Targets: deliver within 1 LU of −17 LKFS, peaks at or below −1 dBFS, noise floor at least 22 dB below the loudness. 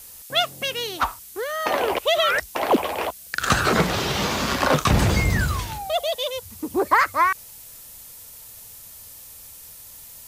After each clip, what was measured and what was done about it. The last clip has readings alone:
background noise floor −43 dBFS; target noise floor −45 dBFS; integrated loudness −22.5 LKFS; sample peak −5.0 dBFS; target loudness −17.0 LKFS
→ broadband denoise 6 dB, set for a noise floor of −43 dBFS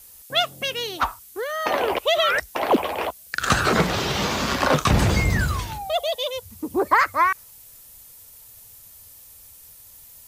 background noise floor −47 dBFS; integrated loudness −22.5 LKFS; sample peak −5.0 dBFS; target loudness −17.0 LKFS
→ level +5.5 dB
brickwall limiter −1 dBFS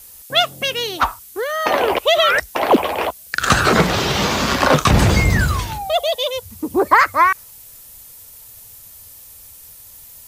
integrated loudness −17.0 LKFS; sample peak −1.0 dBFS; background noise floor −42 dBFS

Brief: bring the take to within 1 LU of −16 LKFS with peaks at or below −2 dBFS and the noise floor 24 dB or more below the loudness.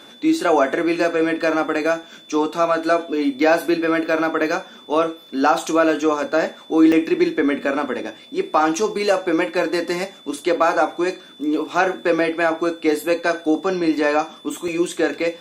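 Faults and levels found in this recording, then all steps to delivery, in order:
number of dropouts 3; longest dropout 2.9 ms; interfering tone 3,500 Hz; level of the tone −44 dBFS; integrated loudness −20.0 LKFS; sample peak −3.5 dBFS; target loudness −16.0 LKFS
→ repair the gap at 0:02.03/0:06.92/0:14.68, 2.9 ms
notch filter 3,500 Hz, Q 30
level +4 dB
brickwall limiter −2 dBFS

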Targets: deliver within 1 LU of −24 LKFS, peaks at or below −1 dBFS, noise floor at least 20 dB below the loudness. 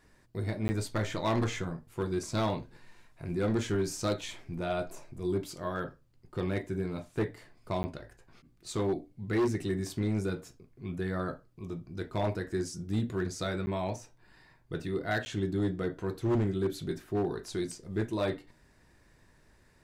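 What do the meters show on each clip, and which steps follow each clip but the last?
share of clipped samples 1.4%; peaks flattened at −23.5 dBFS; number of dropouts 4; longest dropout 10 ms; integrated loudness −33.5 LKFS; sample peak −23.5 dBFS; target loudness −24.0 LKFS
→ clipped peaks rebuilt −23.5 dBFS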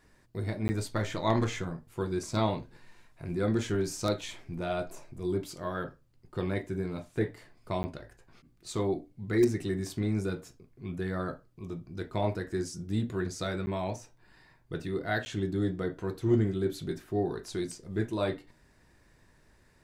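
share of clipped samples 0.0%; number of dropouts 4; longest dropout 10 ms
→ repair the gap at 0:00.68/0:07.83/0:13.66/0:15.25, 10 ms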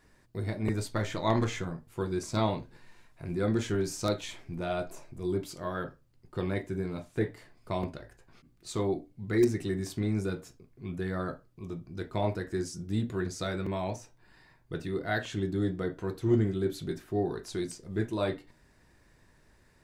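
number of dropouts 0; integrated loudness −33.0 LKFS; sample peak −14.5 dBFS; target loudness −24.0 LKFS
→ level +9 dB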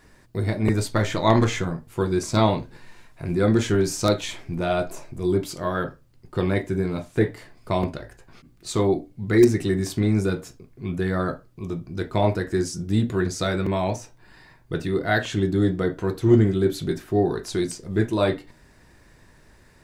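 integrated loudness −24.0 LKFS; sample peak −5.5 dBFS; background noise floor −55 dBFS

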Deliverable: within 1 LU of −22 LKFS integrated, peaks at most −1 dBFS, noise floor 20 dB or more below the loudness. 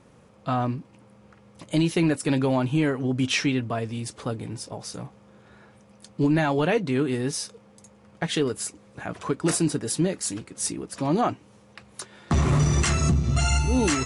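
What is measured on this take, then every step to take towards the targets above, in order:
integrated loudness −25.0 LKFS; sample peak −13.0 dBFS; target loudness −22.0 LKFS
→ level +3 dB

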